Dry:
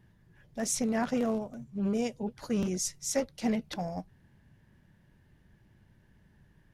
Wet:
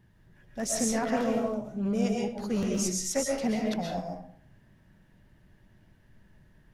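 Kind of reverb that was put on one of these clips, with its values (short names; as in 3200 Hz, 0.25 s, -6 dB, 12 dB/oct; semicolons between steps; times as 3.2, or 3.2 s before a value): digital reverb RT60 0.55 s, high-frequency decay 0.7×, pre-delay 90 ms, DRR -1 dB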